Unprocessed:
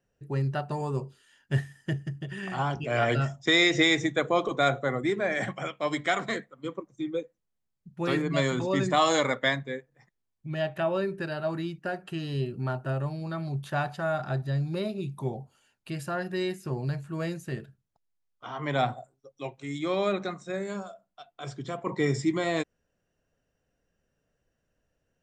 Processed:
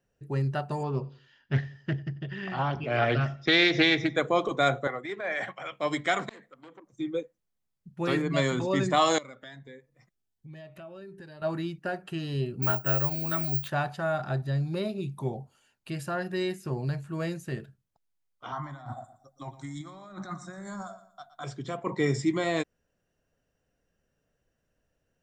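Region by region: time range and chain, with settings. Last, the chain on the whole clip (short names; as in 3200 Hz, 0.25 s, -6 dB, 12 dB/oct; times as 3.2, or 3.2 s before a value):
0.83–4.16 steep low-pass 5300 Hz + feedback echo 93 ms, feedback 32%, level -20 dB + Doppler distortion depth 0.28 ms
4.87–5.72 three-band isolator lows -13 dB, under 480 Hz, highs -12 dB, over 4700 Hz + transient shaper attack -9 dB, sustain -2 dB
6.29–6.93 bell 83 Hz -14 dB 1.1 oct + compressor 10:1, threshold -41 dBFS + core saturation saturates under 2700 Hz
9.18–11.42 compressor 3:1, threshold -46 dBFS + cascading phaser rising 1.3 Hz
12.62–13.68 bell 2200 Hz +8 dB 1.5 oct + careless resampling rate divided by 2×, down filtered, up zero stuff
18.52–21.44 negative-ratio compressor -36 dBFS + fixed phaser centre 1100 Hz, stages 4 + feedback echo 0.117 s, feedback 30%, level -14 dB
whole clip: dry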